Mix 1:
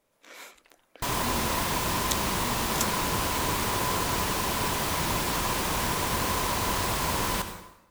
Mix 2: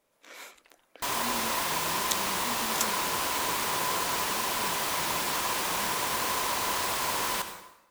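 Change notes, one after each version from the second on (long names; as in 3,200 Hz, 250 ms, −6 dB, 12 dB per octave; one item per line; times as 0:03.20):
second sound: add low-shelf EQ 270 Hz −11.5 dB
master: add low-shelf EQ 170 Hz −7 dB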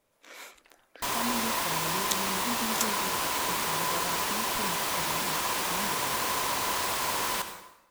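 speech +6.5 dB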